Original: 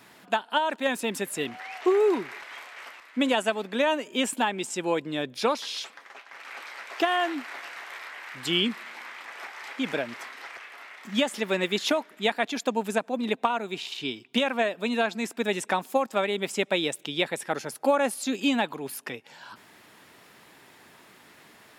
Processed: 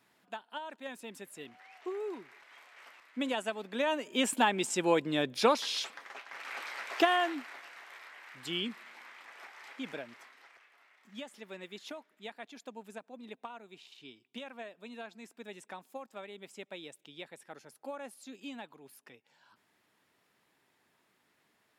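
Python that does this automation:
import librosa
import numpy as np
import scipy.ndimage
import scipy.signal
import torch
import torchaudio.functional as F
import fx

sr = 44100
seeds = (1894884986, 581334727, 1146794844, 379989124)

y = fx.gain(x, sr, db=fx.line((2.36, -16.5), (3.03, -9.5), (3.59, -9.5), (4.48, -0.5), (7.0, -0.5), (7.64, -10.5), (9.75, -10.5), (10.72, -19.5)))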